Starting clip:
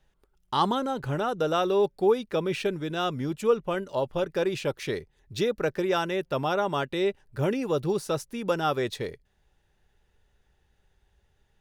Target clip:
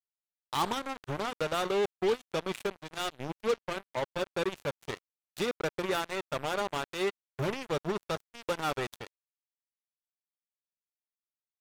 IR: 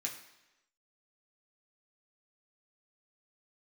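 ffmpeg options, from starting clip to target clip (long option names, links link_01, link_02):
-filter_complex "[0:a]asplit=2[link_01][link_02];[link_02]equalizer=frequency=250:width_type=o:width=1:gain=-10,equalizer=frequency=500:width_type=o:width=1:gain=-7,equalizer=frequency=1000:width_type=o:width=1:gain=4,equalizer=frequency=2000:width_type=o:width=1:gain=5,equalizer=frequency=4000:width_type=o:width=1:gain=7[link_03];[1:a]atrim=start_sample=2205,lowshelf=frequency=130:gain=10[link_04];[link_03][link_04]afir=irnorm=-1:irlink=0,volume=-15.5dB[link_05];[link_01][link_05]amix=inputs=2:normalize=0,acrusher=bits=3:mix=0:aa=0.5,adynamicequalizer=threshold=0.00251:dfrequency=5200:dqfactor=3.6:tfrequency=5200:tqfactor=3.6:attack=5:release=100:ratio=0.375:range=2:mode=cutabove:tftype=bell,volume=-6.5dB"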